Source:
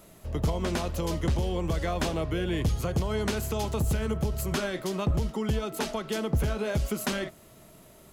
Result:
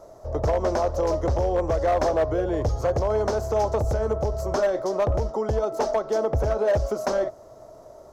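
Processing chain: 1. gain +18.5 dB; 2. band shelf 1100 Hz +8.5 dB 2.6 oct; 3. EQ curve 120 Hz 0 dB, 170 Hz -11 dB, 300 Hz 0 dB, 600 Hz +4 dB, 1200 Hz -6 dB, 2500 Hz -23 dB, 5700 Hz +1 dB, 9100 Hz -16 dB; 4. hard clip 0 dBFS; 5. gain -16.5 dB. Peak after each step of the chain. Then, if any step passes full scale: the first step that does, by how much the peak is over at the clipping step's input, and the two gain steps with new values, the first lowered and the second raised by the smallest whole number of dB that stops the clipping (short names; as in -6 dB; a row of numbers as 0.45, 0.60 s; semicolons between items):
-0.5, +7.5, +6.5, 0.0, -16.5 dBFS; step 2, 6.5 dB; step 1 +11.5 dB, step 5 -9.5 dB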